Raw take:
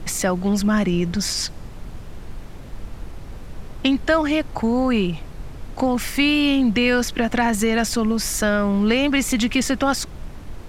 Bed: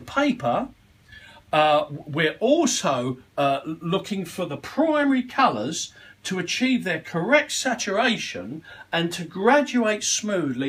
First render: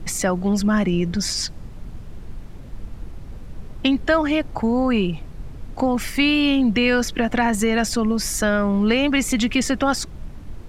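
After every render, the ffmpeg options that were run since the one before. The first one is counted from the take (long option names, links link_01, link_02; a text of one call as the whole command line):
ffmpeg -i in.wav -af "afftdn=noise_reduction=6:noise_floor=-36" out.wav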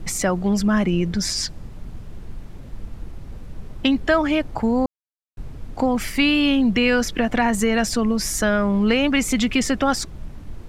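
ffmpeg -i in.wav -filter_complex "[0:a]asplit=3[link_01][link_02][link_03];[link_01]atrim=end=4.86,asetpts=PTS-STARTPTS,afade=type=out:start_time=4.856:duration=0.004:curve=hsin[link_04];[link_02]atrim=start=4.86:end=5.37,asetpts=PTS-STARTPTS,volume=0[link_05];[link_03]atrim=start=5.37,asetpts=PTS-STARTPTS,afade=type=in:duration=0.004:curve=hsin[link_06];[link_04][link_05][link_06]concat=n=3:v=0:a=1" out.wav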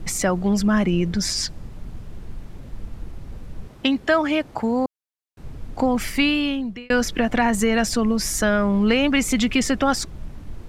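ffmpeg -i in.wav -filter_complex "[0:a]asettb=1/sr,asplit=3[link_01][link_02][link_03];[link_01]atrim=end=3.674[link_04];[link_02]atrim=start=3.67:end=5.44,asetpts=PTS-STARTPTS,afade=type=in:duration=0.004:curve=qsin,afade=type=out:start_time=1.766:duration=0.004:curve=qsin,highpass=frequency=210:poles=1[link_05];[link_03]atrim=start=5.436[link_06];[link_04][link_05]acrossfade=duration=0.004:curve1=hsin:curve2=qsin[link_07];[link_07][link_06]acrossfade=duration=0.004:curve1=qsin:curve2=hsin,asplit=2[link_08][link_09];[link_08]atrim=end=6.9,asetpts=PTS-STARTPTS,afade=type=out:start_time=6.15:duration=0.75[link_10];[link_09]atrim=start=6.9,asetpts=PTS-STARTPTS,afade=type=in:duration=0.004:curve=hsin[link_11];[link_10][link_11]concat=n=2:v=0:a=1" out.wav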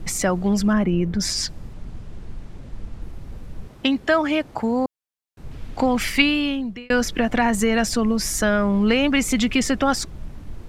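ffmpeg -i in.wav -filter_complex "[0:a]asettb=1/sr,asplit=3[link_01][link_02][link_03];[link_01]atrim=end=0.734[link_04];[link_02]atrim=start=0.73:end=1.2,asetpts=PTS-STARTPTS,afade=type=in:duration=0.004:curve=qsin,afade=type=out:start_time=0.466:duration=0.004:curve=qsin,equalizer=frequency=6100:width_type=o:width=2.4:gain=-11[link_05];[link_03]atrim=start=1.196[link_06];[link_04][link_05]acrossfade=duration=0.004:curve1=hsin:curve2=qsin[link_07];[link_07][link_06]acrossfade=duration=0.004:curve1=qsin:curve2=hsin,asettb=1/sr,asplit=3[link_08][link_09][link_10];[link_08]atrim=end=1.734[link_11];[link_09]atrim=start=1.73:end=3.02,asetpts=PTS-STARTPTS,afade=type=in:duration=0.004:curve=qsin,afade=type=out:start_time=1.286:duration=0.004:curve=qsin,lowpass=9500[link_12];[link_10]atrim=start=3.016[link_13];[link_11][link_12]acrossfade=duration=0.004:curve1=hsin:curve2=qsin[link_14];[link_14][link_13]acrossfade=duration=0.004:curve1=qsin:curve2=hsin,asettb=1/sr,asplit=3[link_15][link_16][link_17];[link_15]atrim=end=5.514[link_18];[link_16]atrim=start=5.51:end=6.22,asetpts=PTS-STARTPTS,afade=type=in:duration=0.004:curve=qsin,afade=type=out:start_time=0.706:duration=0.004:curve=qsin,equalizer=frequency=2900:width=0.64:gain=7[link_19];[link_17]atrim=start=6.216[link_20];[link_18][link_19]acrossfade=duration=0.004:curve1=hsin:curve2=qsin[link_21];[link_21][link_20]acrossfade=duration=0.004:curve1=qsin:curve2=hsin" out.wav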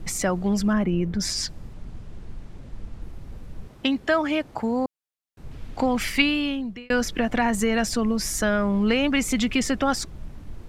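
ffmpeg -i in.wav -af "volume=-3dB" out.wav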